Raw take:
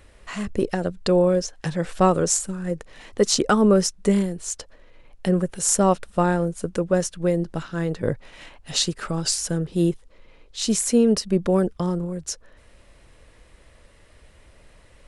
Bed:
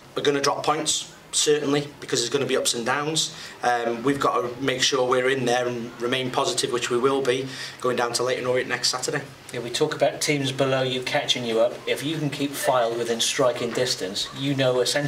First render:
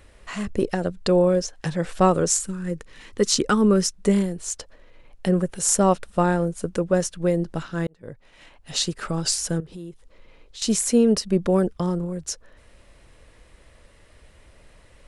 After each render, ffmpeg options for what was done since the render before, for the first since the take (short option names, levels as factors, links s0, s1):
-filter_complex "[0:a]asettb=1/sr,asplit=3[s0][s1][s2];[s0]atrim=end=2.274[s3];[s1]atrim=start=2.27:end=3.93,asetpts=PTS-STARTPTS,afade=t=in:d=0.004:c=qsin,afade=t=out:st=1.656:d=0.004:c=qsin,equalizer=f=680:t=o:w=0.64:g=-10.5[s4];[s2]atrim=start=3.926[s5];[s3][s4]acrossfade=d=0.004:c1=hsin:c2=qsin[s6];[s6][s5]acrossfade=d=0.004:c1=qsin:c2=hsin,asettb=1/sr,asplit=3[s7][s8][s9];[s7]atrim=end=9.604[s10];[s8]atrim=start=9.6:end=10.62,asetpts=PTS-STARTPTS,afade=t=in:d=0.004:c=qsin,afade=t=out:st=1.016:d=0.004:c=qsin,acompressor=threshold=0.0141:ratio=4:attack=3.2:release=140:knee=1:detection=peak[s11];[s9]atrim=start=10.616[s12];[s10][s11]acrossfade=d=0.004:c1=hsin:c2=qsin[s13];[s13][s12]acrossfade=d=0.004:c1=qsin:c2=hsin,asplit=2[s14][s15];[s14]atrim=end=7.87,asetpts=PTS-STARTPTS,afade=t=out:st=7.866:d=0.004:c=hsin[s16];[s15]atrim=start=7.87,asetpts=PTS-STARTPTS,afade=t=in:d=1.18[s17];[s16][s17]concat=n=2:v=0:a=1"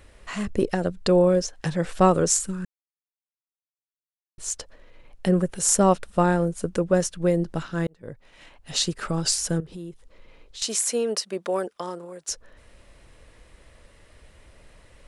-filter_complex "[0:a]asettb=1/sr,asplit=3[s0][s1][s2];[s0]atrim=end=10.634[s3];[s1]atrim=start=10.63:end=12.29,asetpts=PTS-STARTPTS,afade=t=in:d=0.004:c=qsin,afade=t=out:st=1.656:d=0.004:c=qsin,highpass=540[s4];[s2]atrim=start=12.286[s5];[s3][s4]acrossfade=d=0.004:c1=hsin:c2=qsin[s6];[s6][s5]acrossfade=d=0.004:c1=qsin:c2=hsin,asplit=3[s7][s8][s9];[s7]atrim=end=2.65,asetpts=PTS-STARTPTS,afade=t=out:st=2.646:d=0.004:c=hsin[s10];[s8]atrim=start=2.65:end=4.38,asetpts=PTS-STARTPTS,volume=0[s11];[s9]atrim=start=4.38,asetpts=PTS-STARTPTS,afade=t=in:d=0.004:c=hsin[s12];[s10][s11][s12]concat=n=3:v=0:a=1"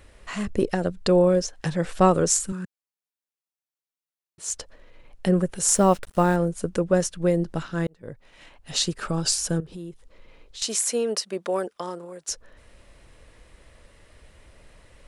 -filter_complex "[0:a]asettb=1/sr,asplit=3[s0][s1][s2];[s0]atrim=end=2.524[s3];[s1]atrim=start=2.52:end=4.5,asetpts=PTS-STARTPTS,afade=t=in:d=0.004:c=qsin,afade=t=out:st=1.976:d=0.004:c=qsin,highpass=130[s4];[s2]atrim=start=4.496[s5];[s3][s4]acrossfade=d=0.004:c1=hsin:c2=qsin[s6];[s6][s5]acrossfade=d=0.004:c1=qsin:c2=hsin,asettb=1/sr,asplit=3[s7][s8][s9];[s7]atrim=end=5.694[s10];[s8]atrim=start=5.69:end=6.36,asetpts=PTS-STARTPTS,afade=t=in:d=0.004:c=qsin,afade=t=out:st=0.666:d=0.004:c=qsin,acrusher=bits=6:mix=0:aa=0.5[s11];[s9]atrim=start=6.356[s12];[s10][s11]acrossfade=d=0.004:c1=hsin:c2=qsin[s13];[s13][s12]acrossfade=d=0.004:c1=qsin:c2=hsin,asettb=1/sr,asplit=3[s14][s15][s16];[s14]atrim=end=8.994[s17];[s15]atrim=start=8.99:end=9.73,asetpts=PTS-STARTPTS,afade=t=in:d=0.004:c=qsin,afade=t=out:st=0.736:d=0.004:c=qsin,bandreject=f=2000:w=12[s18];[s16]atrim=start=9.726[s19];[s17][s18]acrossfade=d=0.004:c1=hsin:c2=qsin[s20];[s20][s19]acrossfade=d=0.004:c1=qsin:c2=hsin"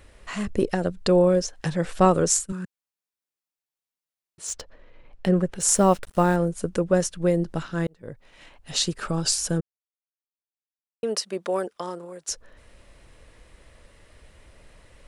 -filter_complex "[0:a]asettb=1/sr,asplit=3[s0][s1][s2];[s0]atrim=end=2.054[s3];[s1]atrim=start=2.05:end=2.5,asetpts=PTS-STARTPTS,afade=t=in:d=0.004:c=qsin,afade=t=out:st=0.446:d=0.004:c=qsin,agate=range=0.0224:threshold=0.0501:ratio=3:release=100:detection=peak[s4];[s2]atrim=start=2.496[s5];[s3][s4]acrossfade=d=0.004:c1=hsin:c2=qsin[s6];[s6][s5]acrossfade=d=0.004:c1=qsin:c2=hsin,asettb=1/sr,asplit=3[s7][s8][s9];[s7]atrim=end=4.474[s10];[s8]atrim=start=4.47:end=5.63,asetpts=PTS-STARTPTS,afade=t=in:d=0.004:c=qsin,afade=t=out:st=1.156:d=0.004:c=qsin,adynamicsmooth=sensitivity=7:basefreq=4500[s11];[s9]atrim=start=5.626[s12];[s10][s11]acrossfade=d=0.004:c1=hsin:c2=qsin[s13];[s13][s12]acrossfade=d=0.004:c1=qsin:c2=hsin,asplit=3[s14][s15][s16];[s14]atrim=end=9.61,asetpts=PTS-STARTPTS,afade=t=out:st=9.606:d=0.004:c=hsin[s17];[s15]atrim=start=9.61:end=11.03,asetpts=PTS-STARTPTS,volume=0[s18];[s16]atrim=start=11.03,asetpts=PTS-STARTPTS,afade=t=in:d=0.004:c=hsin[s19];[s17][s18][s19]concat=n=3:v=0:a=1"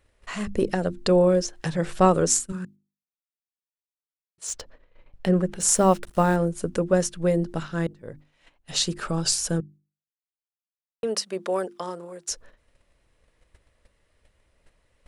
-af "agate=range=0.2:threshold=0.00501:ratio=16:detection=peak,bandreject=f=50:t=h:w=6,bandreject=f=100:t=h:w=6,bandreject=f=150:t=h:w=6,bandreject=f=200:t=h:w=6,bandreject=f=250:t=h:w=6,bandreject=f=300:t=h:w=6,bandreject=f=350:t=h:w=6"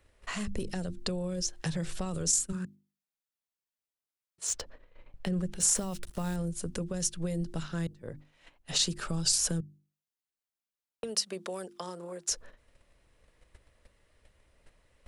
-filter_complex "[0:a]alimiter=limit=0.168:level=0:latency=1:release=22,acrossover=split=150|3000[s0][s1][s2];[s1]acompressor=threshold=0.0158:ratio=10[s3];[s0][s3][s2]amix=inputs=3:normalize=0"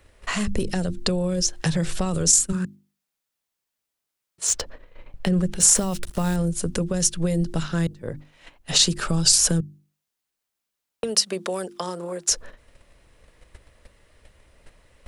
-af "volume=3.16"